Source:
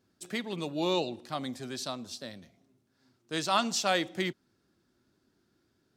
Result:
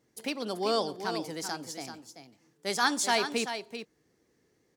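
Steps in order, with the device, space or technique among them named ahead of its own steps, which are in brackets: delay 482 ms -9 dB; nightcore (tape speed +25%); trim +1 dB

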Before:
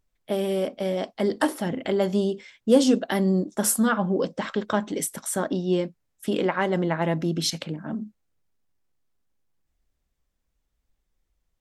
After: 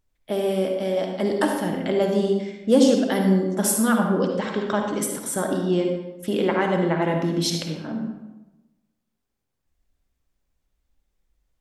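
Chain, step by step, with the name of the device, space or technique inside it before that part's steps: bathroom (reverberation RT60 1.0 s, pre-delay 48 ms, DRR 2.5 dB)

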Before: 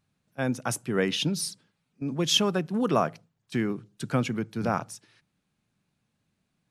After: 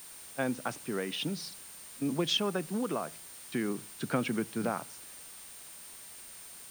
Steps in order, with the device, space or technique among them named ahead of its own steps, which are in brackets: medium wave at night (band-pass 190–3800 Hz; compression, threshold -27 dBFS, peak gain reduction 9 dB; tremolo 0.48 Hz, depth 43%; whistle 9 kHz -51 dBFS; white noise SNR 15 dB); trim +1.5 dB

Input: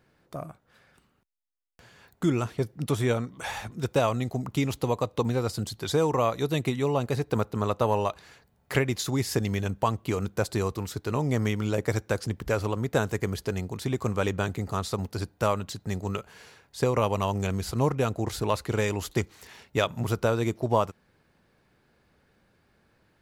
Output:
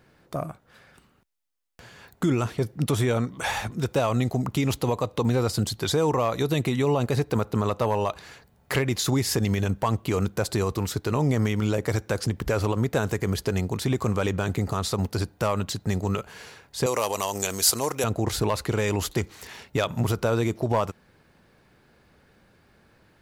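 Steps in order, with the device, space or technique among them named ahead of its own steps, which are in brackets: clipper into limiter (hard clipper -15 dBFS, distortion -26 dB; peak limiter -21.5 dBFS, peak gain reduction 6.5 dB); 16.86–18.04 s: tone controls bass -15 dB, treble +15 dB; trim +6.5 dB

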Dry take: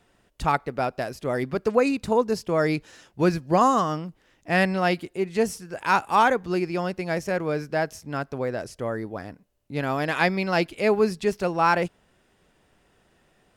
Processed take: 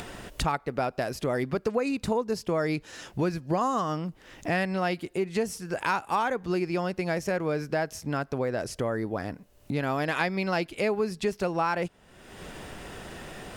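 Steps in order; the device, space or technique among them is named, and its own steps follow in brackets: upward and downward compression (upward compressor, threshold -23 dBFS; compression, threshold -23 dBFS, peak gain reduction 9.5 dB)

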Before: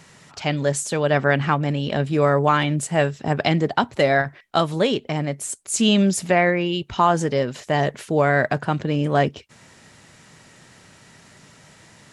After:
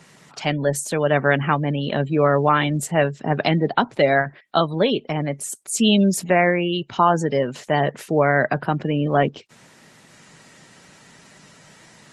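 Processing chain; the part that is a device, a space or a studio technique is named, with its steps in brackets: noise-suppressed video call (high-pass 130 Hz 24 dB/octave; spectral gate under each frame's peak -30 dB strong; trim +1 dB; Opus 20 kbps 48 kHz)

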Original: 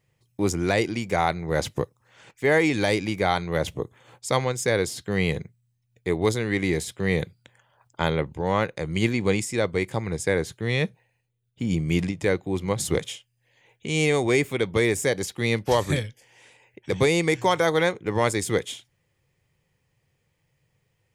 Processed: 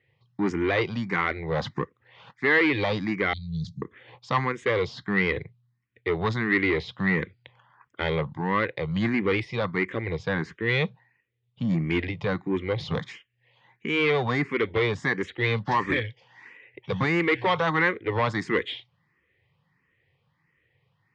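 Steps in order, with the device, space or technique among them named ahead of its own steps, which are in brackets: 3.33–3.82 s: Chebyshev band-stop 200–4200 Hz, order 4; barber-pole phaser into a guitar amplifier (barber-pole phaser +1.5 Hz; saturation -22 dBFS, distortion -12 dB; cabinet simulation 88–3900 Hz, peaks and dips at 630 Hz -5 dB, 1.1 kHz +6 dB, 1.9 kHz +8 dB); trim +4 dB

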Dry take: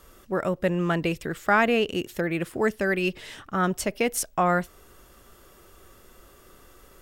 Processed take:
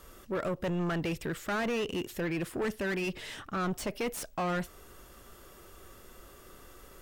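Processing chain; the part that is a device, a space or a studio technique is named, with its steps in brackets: saturation between pre-emphasis and de-emphasis (treble shelf 2.8 kHz +11 dB; saturation -27.5 dBFS, distortion -5 dB; treble shelf 2.8 kHz -11 dB)

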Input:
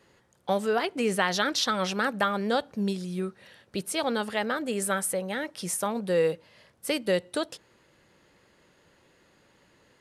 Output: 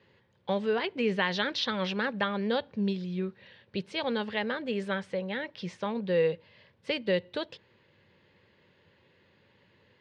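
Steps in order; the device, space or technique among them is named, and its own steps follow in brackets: guitar cabinet (cabinet simulation 93–4000 Hz, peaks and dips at 94 Hz +9 dB, 300 Hz -7 dB, 710 Hz -9 dB, 1.3 kHz -9 dB); 5.00–6.26 s: low-pass 7.6 kHz 12 dB/octave

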